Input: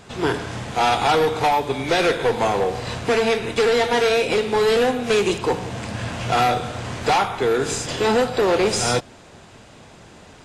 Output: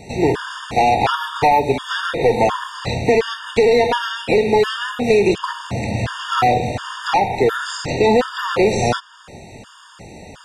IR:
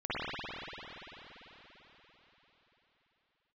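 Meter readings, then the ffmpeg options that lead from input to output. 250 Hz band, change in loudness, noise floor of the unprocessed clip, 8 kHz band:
+3.5 dB, +2.5 dB, −46 dBFS, −4.0 dB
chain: -filter_complex "[0:a]acrossover=split=1400|5300[link_01][link_02][link_03];[link_01]acompressor=threshold=-19dB:ratio=4[link_04];[link_02]acompressor=threshold=-30dB:ratio=4[link_05];[link_03]acompressor=threshold=-50dB:ratio=4[link_06];[link_04][link_05][link_06]amix=inputs=3:normalize=0,afftfilt=real='re*gt(sin(2*PI*1.4*pts/sr)*(1-2*mod(floor(b*sr/1024/920),2)),0)':imag='im*gt(sin(2*PI*1.4*pts/sr)*(1-2*mod(floor(b*sr/1024/920),2)),0)':win_size=1024:overlap=0.75,volume=8dB"

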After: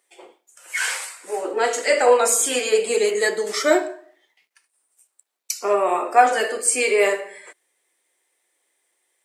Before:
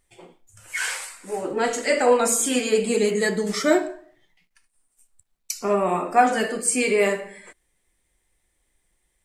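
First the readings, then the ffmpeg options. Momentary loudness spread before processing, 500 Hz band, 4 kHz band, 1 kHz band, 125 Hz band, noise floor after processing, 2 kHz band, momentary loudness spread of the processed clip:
13 LU, +2.5 dB, +3.0 dB, +3.0 dB, below −15 dB, −76 dBFS, +3.0 dB, 13 LU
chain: -af "highpass=frequency=360:width=0.5412,highpass=frequency=360:width=1.3066,volume=3dB"

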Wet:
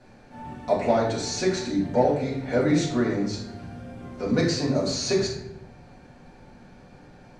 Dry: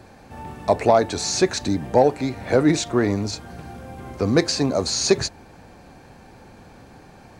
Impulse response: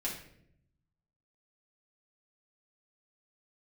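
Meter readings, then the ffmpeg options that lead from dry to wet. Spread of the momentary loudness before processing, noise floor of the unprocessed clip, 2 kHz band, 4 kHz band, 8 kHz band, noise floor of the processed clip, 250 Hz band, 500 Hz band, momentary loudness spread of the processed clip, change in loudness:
19 LU, −47 dBFS, −4.0 dB, −5.5 dB, −7.5 dB, −51 dBFS, −2.5 dB, −4.0 dB, 17 LU, −4.0 dB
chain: -filter_complex "[0:a]lowpass=7500[link_01];[1:a]atrim=start_sample=2205,asetrate=37485,aresample=44100[link_02];[link_01][link_02]afir=irnorm=-1:irlink=0,volume=-8dB"

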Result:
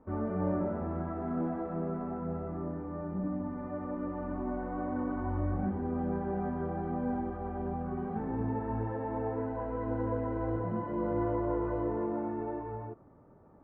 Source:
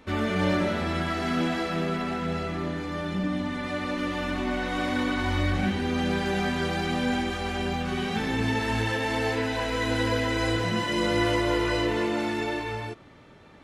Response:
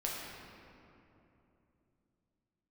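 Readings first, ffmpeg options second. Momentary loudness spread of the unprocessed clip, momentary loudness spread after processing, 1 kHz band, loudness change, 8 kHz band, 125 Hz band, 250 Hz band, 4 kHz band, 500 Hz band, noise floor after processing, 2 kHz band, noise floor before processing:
5 LU, 6 LU, −7.5 dB, −7.5 dB, below −35 dB, −6.0 dB, −6.0 dB, below −40 dB, −6.0 dB, −57 dBFS, −21.5 dB, −51 dBFS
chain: -af "lowpass=frequency=1100:width=0.5412,lowpass=frequency=1100:width=1.3066,volume=-6dB"

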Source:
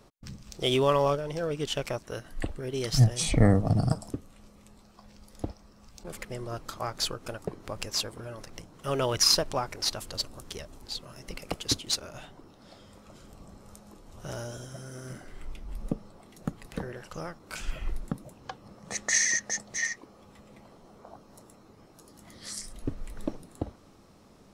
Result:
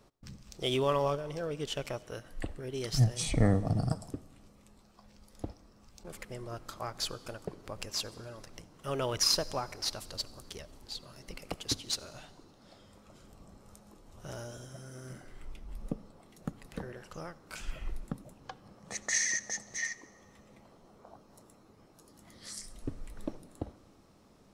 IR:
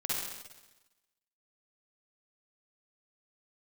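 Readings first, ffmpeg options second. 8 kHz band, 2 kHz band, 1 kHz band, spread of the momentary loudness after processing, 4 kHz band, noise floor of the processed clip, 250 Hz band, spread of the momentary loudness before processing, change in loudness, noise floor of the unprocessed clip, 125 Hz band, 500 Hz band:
−5.0 dB, −5.0 dB, −5.0 dB, 20 LU, −5.0 dB, −61 dBFS, −5.0 dB, 21 LU, −5.0 dB, −56 dBFS, −5.0 dB, −5.0 dB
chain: -filter_complex "[0:a]asplit=2[link_01][link_02];[1:a]atrim=start_sample=2205,asetrate=32193,aresample=44100[link_03];[link_02][link_03]afir=irnorm=-1:irlink=0,volume=-26.5dB[link_04];[link_01][link_04]amix=inputs=2:normalize=0,volume=-5.5dB"

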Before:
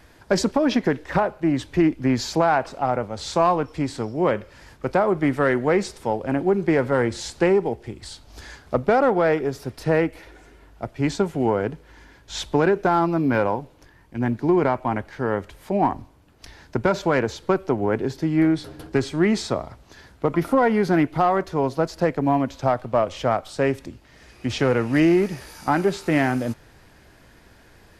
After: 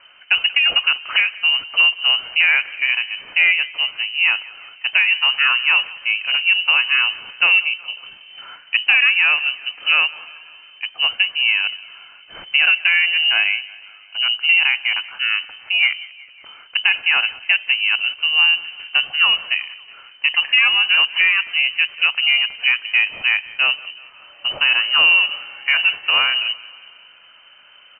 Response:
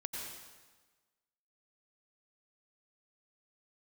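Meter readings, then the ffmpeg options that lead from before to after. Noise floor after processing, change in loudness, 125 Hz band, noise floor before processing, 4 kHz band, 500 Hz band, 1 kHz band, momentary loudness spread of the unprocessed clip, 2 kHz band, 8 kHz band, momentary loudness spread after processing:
−47 dBFS, +7.0 dB, below −30 dB, −52 dBFS, +22.0 dB, below −20 dB, −7.0 dB, 10 LU, +16.0 dB, below −40 dB, 10 LU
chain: -af "aecho=1:1:184|368|552|736:0.0891|0.0508|0.029|0.0165,lowpass=frequency=2600:width_type=q:width=0.5098,lowpass=frequency=2600:width_type=q:width=0.6013,lowpass=frequency=2600:width_type=q:width=0.9,lowpass=frequency=2600:width_type=q:width=2.563,afreqshift=-3100,volume=3.5dB"

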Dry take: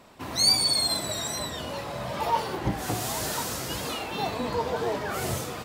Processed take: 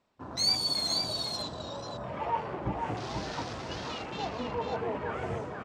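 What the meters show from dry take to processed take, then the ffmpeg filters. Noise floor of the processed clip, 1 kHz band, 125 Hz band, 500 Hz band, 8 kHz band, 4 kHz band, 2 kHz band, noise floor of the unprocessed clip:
−42 dBFS, −4.5 dB, −4.5 dB, −4.5 dB, −11.0 dB, −4.5 dB, −6.5 dB, −37 dBFS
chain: -filter_complex "[0:a]lowpass=frequency=7400:width=0.5412,lowpass=frequency=7400:width=1.3066,afwtdn=0.0141,asplit=2[link_01][link_02];[link_02]aecho=0:1:490:0.562[link_03];[link_01][link_03]amix=inputs=2:normalize=0,volume=-5.5dB"

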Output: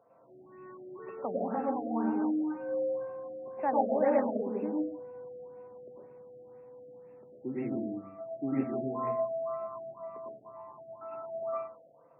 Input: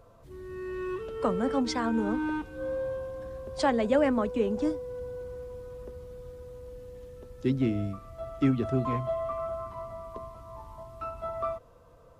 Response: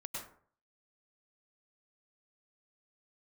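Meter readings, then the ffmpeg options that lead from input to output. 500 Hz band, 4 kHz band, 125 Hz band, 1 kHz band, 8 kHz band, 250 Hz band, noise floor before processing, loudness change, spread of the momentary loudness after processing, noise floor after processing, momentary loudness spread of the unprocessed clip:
−2.5 dB, below −40 dB, −13.5 dB, −1.0 dB, can't be measured, −4.0 dB, −56 dBFS, −3.0 dB, 22 LU, −59 dBFS, 18 LU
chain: -filter_complex "[0:a]highpass=frequency=160:width=0.5412,highpass=frequency=160:width=1.3066,equalizer=frequency=170:width_type=q:width=4:gain=-5,equalizer=frequency=770:width_type=q:width=4:gain=10,equalizer=frequency=1300:width_type=q:width=4:gain=-3,lowpass=frequency=8300:width=0.5412,lowpass=frequency=8300:width=1.3066[link_01];[1:a]atrim=start_sample=2205[link_02];[link_01][link_02]afir=irnorm=-1:irlink=0,afftfilt=real='re*lt(b*sr/1024,710*pow(2800/710,0.5+0.5*sin(2*PI*2*pts/sr)))':imag='im*lt(b*sr/1024,710*pow(2800/710,0.5+0.5*sin(2*PI*2*pts/sr)))':win_size=1024:overlap=0.75,volume=-4dB"

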